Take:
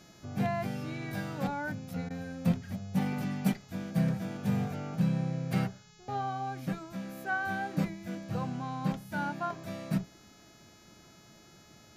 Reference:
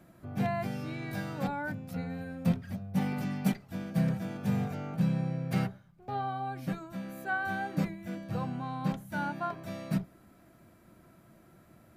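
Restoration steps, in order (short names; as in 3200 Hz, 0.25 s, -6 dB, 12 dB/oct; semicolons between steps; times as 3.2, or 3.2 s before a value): de-hum 423 Hz, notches 17; interpolate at 2.09, 12 ms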